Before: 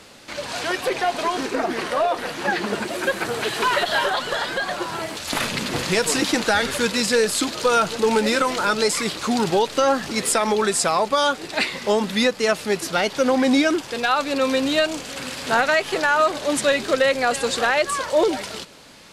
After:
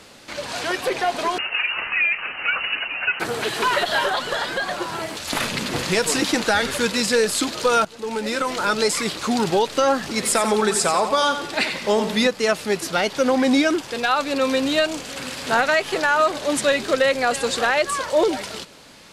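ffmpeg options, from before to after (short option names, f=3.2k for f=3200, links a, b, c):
-filter_complex "[0:a]asettb=1/sr,asplit=3[a][b][c];[a]atrim=end=1.384[d];[b]atrim=start=1.38:end=3.2,asetpts=PTS-STARTPTS,afade=t=in:d=0.004:c=qsin,afade=t=out:st=1.816:d=0.004:c=qsin,lowpass=f=2.6k:t=q:w=0.5098,lowpass=f=2.6k:t=q:w=0.6013,lowpass=f=2.6k:t=q:w=0.9,lowpass=f=2.6k:t=q:w=2.563,afreqshift=-3100[e];[c]atrim=start=3.196[f];[d][e]acrossfade=d=0.004:c1=hsin:c2=qsin[g];[g][f]acrossfade=d=0.004:c1=qsin:c2=hsin,asettb=1/sr,asplit=3[h][i][j];[h]atrim=end=10.144[k];[i]atrim=start=10.14:end=12.27,asetpts=PTS-STARTPTS,afade=t=in:d=0.004:c=qsin,afade=t=out:st=2.126:d=0.004:c=qsin,aecho=1:1:89|178|267|356|445:0.355|0.149|0.0626|0.0263|0.011,atrim=end_sample=93933[l];[j]atrim=start=12.266[m];[k][l]acrossfade=d=0.004:c1=hsin:c2=qsin[n];[n][m]acrossfade=d=0.004:c1=qsin:c2=hsin,asplit=2[o][p];[o]atrim=end=7.85,asetpts=PTS-STARTPTS,afade=t=out:st=7.846:d=0.004:c=hsin:silence=0.125893[q];[p]atrim=start=7.85,asetpts=PTS-STARTPTS,afade=t=in:d=0.88:silence=0.125893[r];[q][r]concat=n=2:v=0:a=1"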